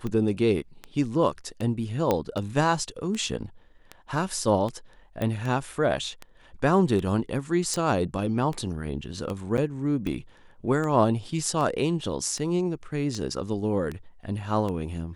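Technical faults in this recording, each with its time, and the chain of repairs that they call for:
scratch tick 78 rpm −20 dBFS
0:02.11: click −10 dBFS
0:05.22: click −17 dBFS
0:07.74: click
0:09.57–0:09.58: drop-out 8.6 ms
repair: click removal
repair the gap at 0:09.57, 8.6 ms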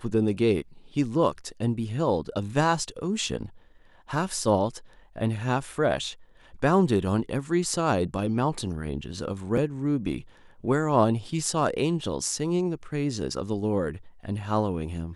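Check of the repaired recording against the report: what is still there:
0:07.74: click

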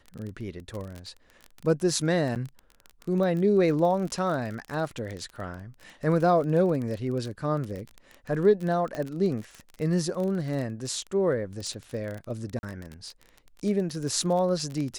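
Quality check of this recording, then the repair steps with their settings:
surface crackle 25 per second −31 dBFS
0:02.35–0:02.36: drop-out 8.3 ms
0:08.95: click −20 dBFS
0:12.59–0:12.63: drop-out 41 ms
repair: click removal
repair the gap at 0:02.35, 8.3 ms
repair the gap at 0:12.59, 41 ms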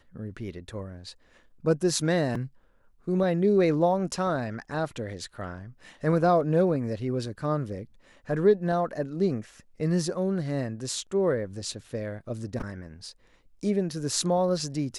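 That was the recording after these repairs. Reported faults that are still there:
none of them is left

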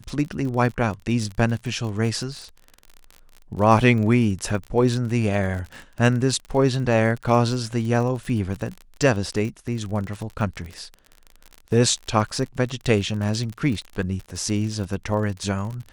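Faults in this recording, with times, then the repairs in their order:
surface crackle 40 per second −29 dBFS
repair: click removal

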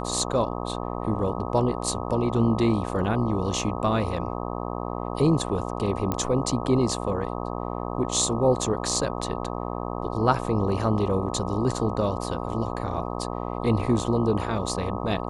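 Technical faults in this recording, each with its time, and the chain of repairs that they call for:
mains buzz 60 Hz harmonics 21 −31 dBFS
0:06.12: click −12 dBFS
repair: click removal
hum removal 60 Hz, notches 21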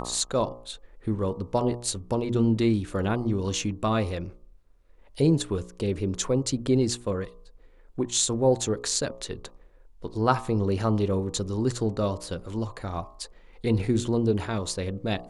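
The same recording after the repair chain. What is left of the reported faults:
none of them is left

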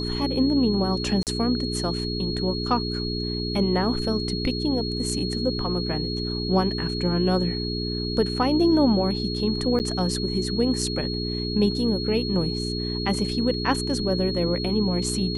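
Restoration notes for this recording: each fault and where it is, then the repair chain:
mains hum 60 Hz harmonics 7 −29 dBFS
whistle 4,300 Hz −31 dBFS
0:01.23–0:01.27: drop-out 38 ms
0:09.79–0:09.80: drop-out 9.4 ms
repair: notch filter 4,300 Hz, Q 30
hum removal 60 Hz, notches 7
repair the gap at 0:01.23, 38 ms
repair the gap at 0:09.79, 9.4 ms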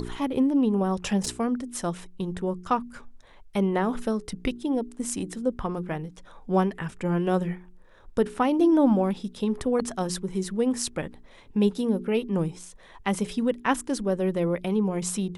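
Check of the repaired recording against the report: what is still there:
none of them is left

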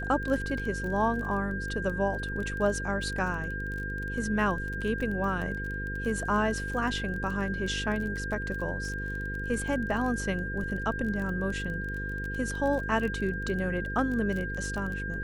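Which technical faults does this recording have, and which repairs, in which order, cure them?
mains buzz 50 Hz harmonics 10 −36 dBFS
surface crackle 23 per second −34 dBFS
whistle 1,600 Hz −35 dBFS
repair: click removal
hum removal 50 Hz, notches 10
notch filter 1,600 Hz, Q 30

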